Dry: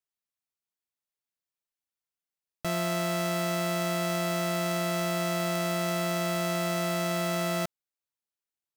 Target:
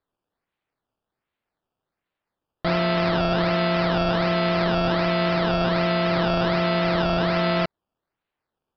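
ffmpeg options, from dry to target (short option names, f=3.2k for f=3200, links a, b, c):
-af "acrusher=samples=15:mix=1:aa=0.000001:lfo=1:lforange=15:lforate=1.3,aresample=11025,aresample=44100,volume=7.5dB"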